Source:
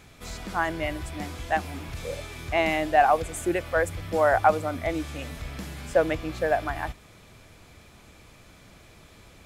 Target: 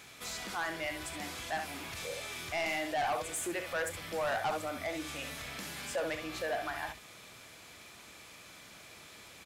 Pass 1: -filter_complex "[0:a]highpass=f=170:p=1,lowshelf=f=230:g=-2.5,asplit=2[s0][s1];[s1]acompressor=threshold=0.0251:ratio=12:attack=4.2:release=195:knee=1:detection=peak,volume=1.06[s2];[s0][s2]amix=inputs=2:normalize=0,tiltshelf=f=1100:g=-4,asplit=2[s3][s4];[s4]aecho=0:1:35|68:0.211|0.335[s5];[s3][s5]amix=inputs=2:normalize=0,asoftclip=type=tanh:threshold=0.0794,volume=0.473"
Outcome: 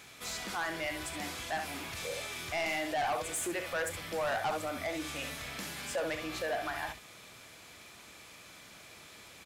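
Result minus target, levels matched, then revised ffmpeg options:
compression: peak gain reduction -6.5 dB
-filter_complex "[0:a]highpass=f=170:p=1,lowshelf=f=230:g=-2.5,asplit=2[s0][s1];[s1]acompressor=threshold=0.0112:ratio=12:attack=4.2:release=195:knee=1:detection=peak,volume=1.06[s2];[s0][s2]amix=inputs=2:normalize=0,tiltshelf=f=1100:g=-4,asplit=2[s3][s4];[s4]aecho=0:1:35|68:0.211|0.335[s5];[s3][s5]amix=inputs=2:normalize=0,asoftclip=type=tanh:threshold=0.0794,volume=0.473"

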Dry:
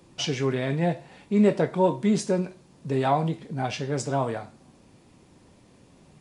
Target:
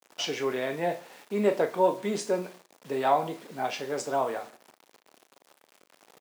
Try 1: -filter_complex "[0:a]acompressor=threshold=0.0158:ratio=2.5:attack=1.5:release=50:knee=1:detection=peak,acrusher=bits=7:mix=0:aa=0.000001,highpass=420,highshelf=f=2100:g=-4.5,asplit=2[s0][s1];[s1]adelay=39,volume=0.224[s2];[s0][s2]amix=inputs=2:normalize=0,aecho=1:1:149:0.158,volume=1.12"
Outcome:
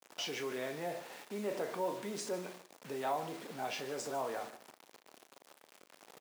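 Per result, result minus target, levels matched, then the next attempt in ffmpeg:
compression: peak gain reduction +15 dB; echo-to-direct +8 dB
-filter_complex "[0:a]acrusher=bits=7:mix=0:aa=0.000001,highpass=420,highshelf=f=2100:g=-4.5,asplit=2[s0][s1];[s1]adelay=39,volume=0.224[s2];[s0][s2]amix=inputs=2:normalize=0,aecho=1:1:149:0.158,volume=1.12"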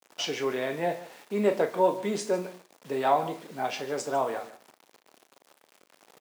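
echo-to-direct +8 dB
-filter_complex "[0:a]acrusher=bits=7:mix=0:aa=0.000001,highpass=420,highshelf=f=2100:g=-4.5,asplit=2[s0][s1];[s1]adelay=39,volume=0.224[s2];[s0][s2]amix=inputs=2:normalize=0,aecho=1:1:149:0.0631,volume=1.12"

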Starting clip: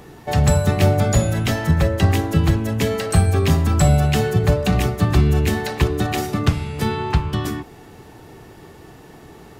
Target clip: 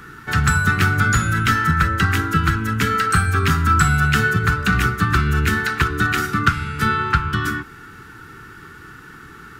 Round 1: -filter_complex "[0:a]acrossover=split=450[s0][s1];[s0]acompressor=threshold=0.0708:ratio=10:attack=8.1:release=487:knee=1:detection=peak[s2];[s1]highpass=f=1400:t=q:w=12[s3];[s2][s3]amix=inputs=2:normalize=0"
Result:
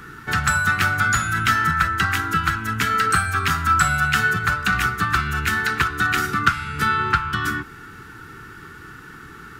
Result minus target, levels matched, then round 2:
compression: peak gain reduction +8.5 dB
-filter_complex "[0:a]acrossover=split=450[s0][s1];[s0]acompressor=threshold=0.211:ratio=10:attack=8.1:release=487:knee=1:detection=peak[s2];[s1]highpass=f=1400:t=q:w=12[s3];[s2][s3]amix=inputs=2:normalize=0"

